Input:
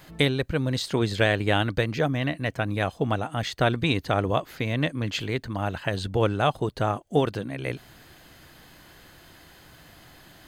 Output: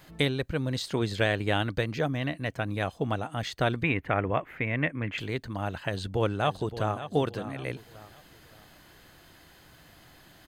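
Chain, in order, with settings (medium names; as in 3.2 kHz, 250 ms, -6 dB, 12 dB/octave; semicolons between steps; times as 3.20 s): 3.83–5.18 s: resonant high shelf 3.2 kHz -13.5 dB, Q 3; 5.86–6.96 s: echo throw 570 ms, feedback 35%, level -12 dB; trim -4 dB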